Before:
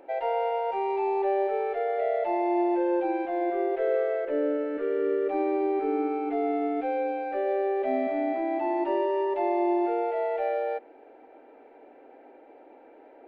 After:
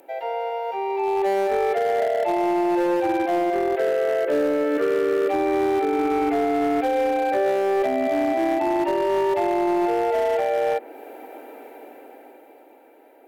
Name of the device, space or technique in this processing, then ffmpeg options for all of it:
FM broadcast chain: -filter_complex "[0:a]highpass=76,dynaudnorm=f=140:g=21:m=13.5dB,acrossover=split=670|2800[a][b][c];[a]acompressor=threshold=-18dB:ratio=4[d];[b]acompressor=threshold=-24dB:ratio=4[e];[c]acompressor=threshold=-57dB:ratio=4[f];[d][e][f]amix=inputs=3:normalize=0,aemphasis=mode=production:type=50fm,alimiter=limit=-12dB:level=0:latency=1:release=463,asoftclip=type=hard:threshold=-16dB,lowpass=f=15k:w=0.5412,lowpass=f=15k:w=1.3066,aemphasis=mode=production:type=50fm"

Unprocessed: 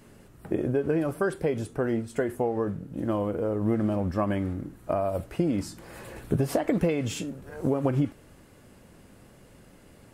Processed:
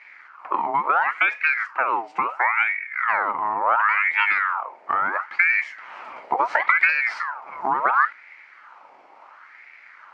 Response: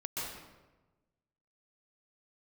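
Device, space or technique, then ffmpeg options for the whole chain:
voice changer toy: -af "aeval=exprs='val(0)*sin(2*PI*1300*n/s+1300*0.6/0.72*sin(2*PI*0.72*n/s))':c=same,highpass=430,equalizer=f=440:t=q:w=4:g=-6,equalizer=f=910:t=q:w=4:g=7,equalizer=f=1.3k:t=q:w=4:g=7,equalizer=f=2.2k:t=q:w=4:g=8,equalizer=f=3.6k:t=q:w=4:g=-9,lowpass=f=4.6k:w=0.5412,lowpass=f=4.6k:w=1.3066,volume=4dB"

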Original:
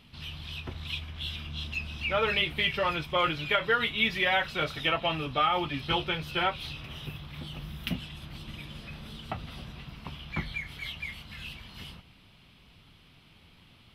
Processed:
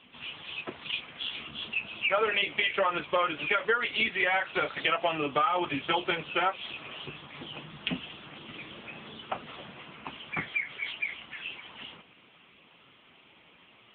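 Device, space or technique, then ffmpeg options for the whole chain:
voicemail: -af "highpass=330,lowpass=3.1k,acompressor=threshold=-30dB:ratio=12,volume=9dB" -ar 8000 -c:a libopencore_amrnb -b:a 6700

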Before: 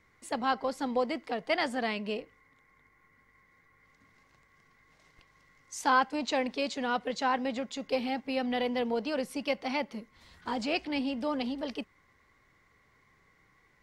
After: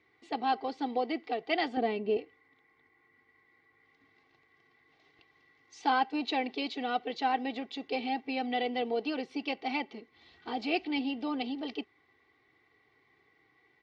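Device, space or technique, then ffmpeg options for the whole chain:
kitchen radio: -filter_complex "[0:a]highpass=170,equalizer=f=520:t=q:w=4:g=-4,equalizer=f=1.1k:t=q:w=4:g=-8,equalizer=f=1.6k:t=q:w=4:g=-9,lowpass=f=4.2k:w=0.5412,lowpass=f=4.2k:w=1.3066,asettb=1/sr,asplit=3[a][b][c];[a]atrim=end=1.774[d];[b]atrim=start=1.77:end=2.17,asetpts=PTS-STARTPTS,afade=t=in:d=0.004:c=qsin,afade=t=out:st=0.396:d=0.004:c=qsin,tiltshelf=f=850:g=9[e];[c]atrim=start=2.166[f];[d][e]acrossfade=d=0.004:c1=hsin:c2=qsin[g];[g][f]acrossfade=d=0.004:c1=qsin:c2=hsin,aecho=1:1:2.6:0.67"

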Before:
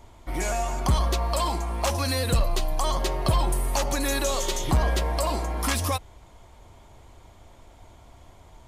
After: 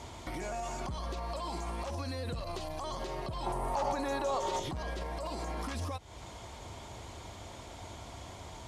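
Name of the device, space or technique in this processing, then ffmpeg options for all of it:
broadcast voice chain: -filter_complex "[0:a]highpass=70,deesser=1,acompressor=threshold=-39dB:ratio=3,equalizer=f=5k:t=o:w=1.6:g=5.5,alimiter=level_in=11dB:limit=-24dB:level=0:latency=1:release=146,volume=-11dB,lowpass=11k,asettb=1/sr,asplit=3[a][b][c];[a]atrim=end=3.464[d];[b]atrim=start=3.46:end=4.6,asetpts=PTS-STARTPTS,afade=t=in:d=0.004:c=qsin,afade=t=out:st=1.136:d=0.004:c=qsin,equalizer=f=860:t=o:w=1.3:g=11.5[e];[c]atrim=start=4.596[f];[d][e]acrossfade=d=0.004:c1=hsin:c2=qsin[g];[g][f]acrossfade=d=0.004:c1=qsin:c2=hsin,volume=6dB"

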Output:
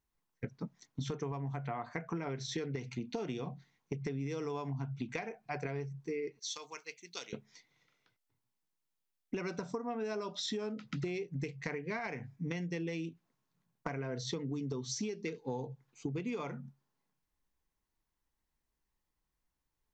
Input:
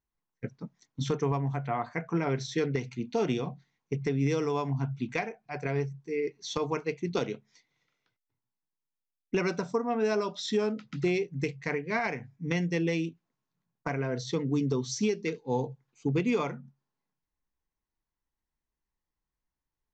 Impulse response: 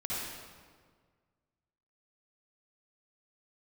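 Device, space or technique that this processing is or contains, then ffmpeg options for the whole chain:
serial compression, leveller first: -filter_complex "[0:a]asettb=1/sr,asplit=3[a][b][c];[a]atrim=end=6.394[d];[b]atrim=start=6.39:end=7.33,asetpts=PTS-STARTPTS,afade=t=in:d=0.004:c=qsin,afade=t=out:st=0.936:d=0.004:c=qsin,aderivative[e];[c]atrim=start=7.326[f];[d][e]acrossfade=d=0.004:c1=hsin:c2=qsin[g];[g][f]acrossfade=d=0.004:c1=qsin:c2=hsin,acompressor=threshold=-35dB:ratio=1.5,acompressor=threshold=-38dB:ratio=6,volume=3dB"

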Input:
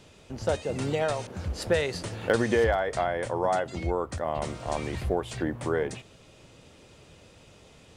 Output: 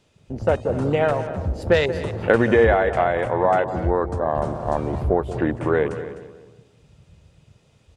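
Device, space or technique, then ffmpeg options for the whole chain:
ducked delay: -filter_complex "[0:a]afwtdn=0.0126,asplit=2[a][b];[b]adelay=182,lowpass=f=1.6k:p=1,volume=-12dB,asplit=2[c][d];[d]adelay=182,lowpass=f=1.6k:p=1,volume=0.37,asplit=2[e][f];[f]adelay=182,lowpass=f=1.6k:p=1,volume=0.37,asplit=2[g][h];[h]adelay=182,lowpass=f=1.6k:p=1,volume=0.37[i];[a][c][e][g][i]amix=inputs=5:normalize=0,asplit=3[j][k][l];[k]adelay=254,volume=-6dB[m];[l]apad=whole_len=394756[n];[m][n]sidechaincompress=threshold=-38dB:ratio=4:attack=36:release=571[o];[j][o]amix=inputs=2:normalize=0,volume=7.5dB"

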